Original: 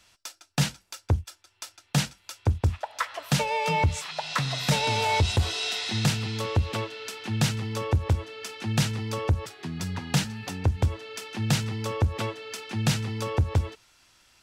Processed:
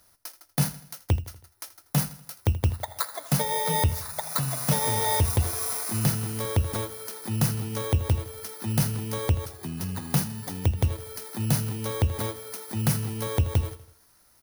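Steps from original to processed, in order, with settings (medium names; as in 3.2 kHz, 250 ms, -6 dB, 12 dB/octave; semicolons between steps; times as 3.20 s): bit-reversed sample order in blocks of 16 samples; feedback delay 81 ms, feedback 48%, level -16.5 dB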